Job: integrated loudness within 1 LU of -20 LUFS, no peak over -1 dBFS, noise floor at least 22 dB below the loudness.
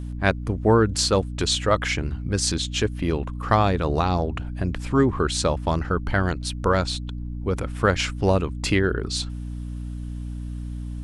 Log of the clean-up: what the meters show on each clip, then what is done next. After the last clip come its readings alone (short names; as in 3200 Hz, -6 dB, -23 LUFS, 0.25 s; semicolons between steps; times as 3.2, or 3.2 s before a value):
hum 60 Hz; harmonics up to 300 Hz; hum level -29 dBFS; loudness -23.5 LUFS; peak -4.5 dBFS; loudness target -20.0 LUFS
-> notches 60/120/180/240/300 Hz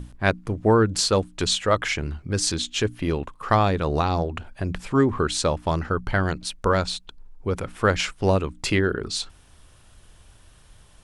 hum none; loudness -24.0 LUFS; peak -4.0 dBFS; loudness target -20.0 LUFS
-> gain +4 dB; limiter -1 dBFS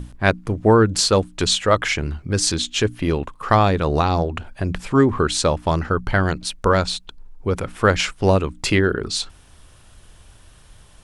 loudness -20.0 LUFS; peak -1.0 dBFS; noise floor -49 dBFS